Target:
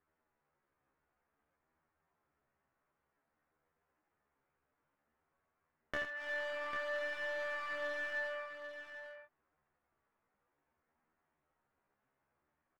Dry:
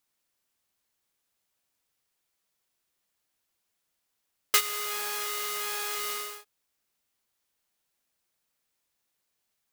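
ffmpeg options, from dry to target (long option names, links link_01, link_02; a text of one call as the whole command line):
ffmpeg -i in.wav -af "lowpass=frequency=1200:width=0.5412,lowpass=frequency=1200:width=1.3066,acompressor=threshold=-44dB:ratio=8,aeval=exprs='clip(val(0),-1,0.00473)':channel_layout=same,atempo=0.76,flanger=delay=17.5:depth=3.6:speed=0.54,asetrate=62367,aresample=44100,atempo=0.707107,aecho=1:1:83|797:0.398|0.376,volume=10.5dB" out.wav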